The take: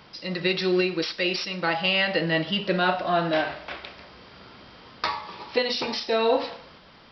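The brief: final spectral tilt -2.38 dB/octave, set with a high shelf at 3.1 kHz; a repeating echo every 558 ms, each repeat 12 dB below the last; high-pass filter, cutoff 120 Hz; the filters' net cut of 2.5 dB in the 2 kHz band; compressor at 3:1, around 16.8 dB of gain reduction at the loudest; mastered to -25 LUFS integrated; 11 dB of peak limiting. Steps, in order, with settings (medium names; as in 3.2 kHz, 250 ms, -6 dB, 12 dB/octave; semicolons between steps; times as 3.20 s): high-pass 120 Hz; peaking EQ 2 kHz -5 dB; treble shelf 3.1 kHz +3.5 dB; compression 3:1, threshold -41 dBFS; peak limiter -31 dBFS; feedback delay 558 ms, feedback 25%, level -12 dB; trim +16.5 dB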